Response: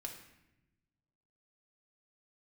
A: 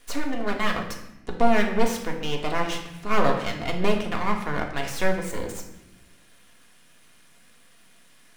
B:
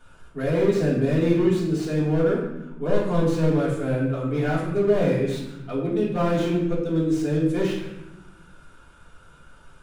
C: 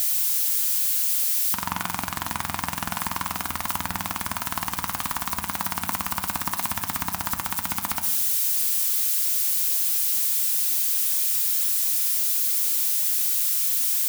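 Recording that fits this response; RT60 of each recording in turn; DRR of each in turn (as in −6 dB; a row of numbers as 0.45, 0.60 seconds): A; 0.90, 0.90, 0.95 seconds; 0.5, −8.5, 7.0 decibels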